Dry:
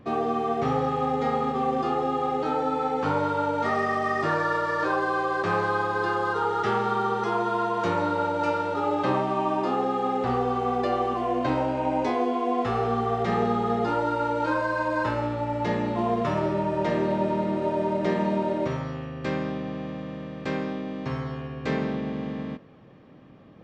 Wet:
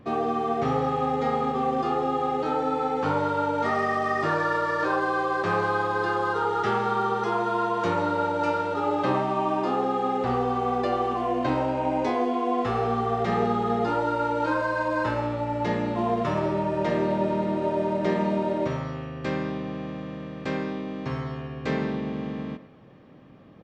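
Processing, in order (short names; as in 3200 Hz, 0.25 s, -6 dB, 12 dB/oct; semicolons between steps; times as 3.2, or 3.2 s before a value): speakerphone echo 0.11 s, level -14 dB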